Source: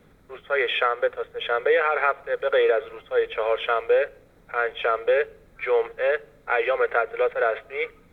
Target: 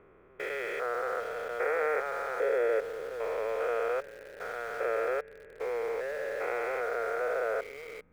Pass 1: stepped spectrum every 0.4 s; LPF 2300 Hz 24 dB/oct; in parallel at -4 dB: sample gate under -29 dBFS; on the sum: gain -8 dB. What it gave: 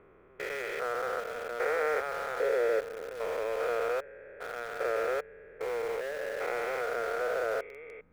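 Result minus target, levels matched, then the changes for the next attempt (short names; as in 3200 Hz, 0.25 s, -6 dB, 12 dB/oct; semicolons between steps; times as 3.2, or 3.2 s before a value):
sample gate: distortion +8 dB
change: sample gate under -35 dBFS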